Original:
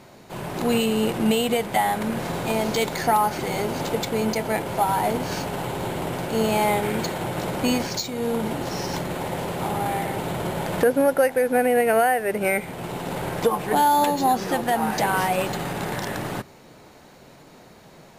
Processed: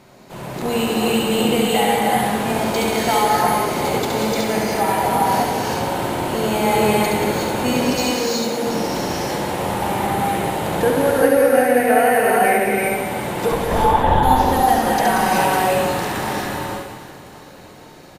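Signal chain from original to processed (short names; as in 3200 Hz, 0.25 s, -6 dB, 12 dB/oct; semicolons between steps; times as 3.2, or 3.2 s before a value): 7.73–8.67 HPF 180 Hz 24 dB/oct; 13.51–14.23 LPC vocoder at 8 kHz whisper; reverse bouncing-ball echo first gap 70 ms, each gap 1.6×, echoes 5; non-linear reverb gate 0.41 s rising, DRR -3 dB; gain -1 dB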